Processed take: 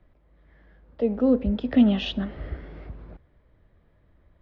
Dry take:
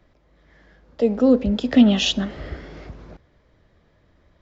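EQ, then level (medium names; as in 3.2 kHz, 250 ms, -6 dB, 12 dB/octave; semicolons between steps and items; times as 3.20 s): low-pass 4 kHz 12 dB/octave; distance through air 170 m; bass shelf 86 Hz +8 dB; -5.0 dB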